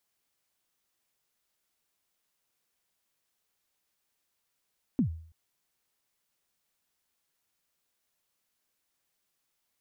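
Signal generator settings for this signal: kick drum length 0.33 s, from 290 Hz, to 81 Hz, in 0.1 s, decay 0.53 s, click off, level -19.5 dB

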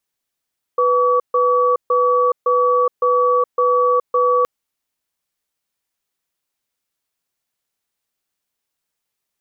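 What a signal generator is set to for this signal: cadence 495 Hz, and 1140 Hz, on 0.42 s, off 0.14 s, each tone -15 dBFS 3.67 s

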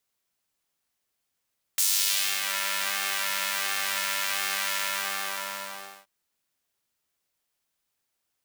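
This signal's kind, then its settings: synth patch with pulse-width modulation G3, sub -4.5 dB, noise -10 dB, filter highpass, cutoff 820 Hz, Q 0.99, filter envelope 3 oct, filter decay 0.75 s, filter sustain 35%, attack 4.6 ms, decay 0.62 s, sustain -10 dB, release 1.30 s, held 2.98 s, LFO 1.4 Hz, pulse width 46%, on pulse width 6%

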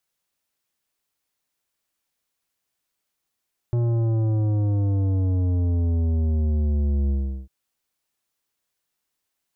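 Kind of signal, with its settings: sub drop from 120 Hz, over 3.75 s, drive 11 dB, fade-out 0.38 s, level -20 dB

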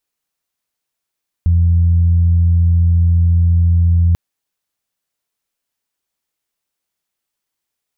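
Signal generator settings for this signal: steady additive tone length 2.69 s, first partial 85.6 Hz, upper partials -16 dB, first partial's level -8.5 dB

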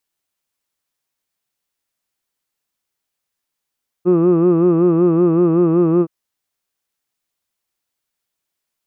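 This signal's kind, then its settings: formant vowel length 2.02 s, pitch 173 Hz, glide -0.5 st, F1 370 Hz, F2 1200 Hz, F3 2600 Hz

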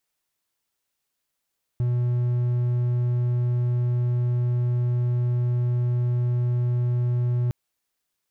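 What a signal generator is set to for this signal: tone triangle 122 Hz -18 dBFS 5.71 s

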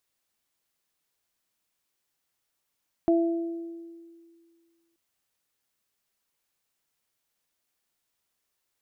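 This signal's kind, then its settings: additive tone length 1.88 s, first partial 335 Hz, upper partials -5 dB, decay 2.04 s, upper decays 1.05 s, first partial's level -18 dB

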